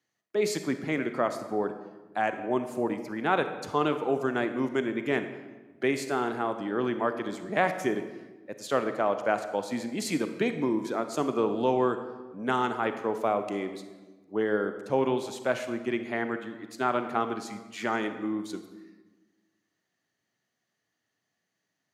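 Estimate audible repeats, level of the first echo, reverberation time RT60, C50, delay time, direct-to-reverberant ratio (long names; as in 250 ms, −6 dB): no echo audible, no echo audible, 1.3 s, 9.5 dB, no echo audible, 8.5 dB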